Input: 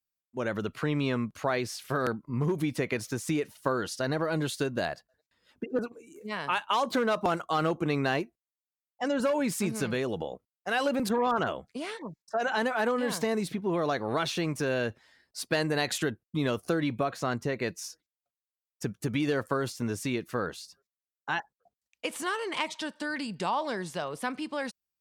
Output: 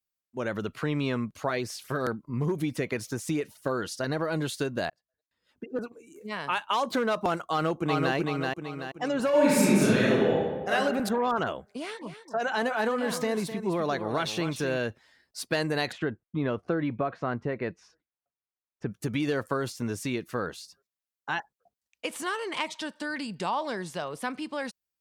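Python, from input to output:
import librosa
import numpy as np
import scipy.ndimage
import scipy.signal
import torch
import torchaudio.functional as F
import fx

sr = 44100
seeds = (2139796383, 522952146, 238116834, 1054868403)

y = fx.filter_lfo_notch(x, sr, shape='saw_up', hz=4.7, low_hz=590.0, high_hz=4700.0, q=2.5, at=(1.19, 4.09), fade=0.02)
y = fx.echo_throw(y, sr, start_s=7.5, length_s=0.65, ms=380, feedback_pct=45, wet_db=-2.5)
y = fx.reverb_throw(y, sr, start_s=9.29, length_s=1.42, rt60_s=1.4, drr_db=-8.0)
y = fx.echo_single(y, sr, ms=257, db=-10.5, at=(12.01, 14.76), fade=0.02)
y = fx.lowpass(y, sr, hz=2000.0, slope=12, at=(15.91, 18.9), fade=0.02)
y = fx.edit(y, sr, fx.fade_in_span(start_s=4.9, length_s=1.2), tone=tone)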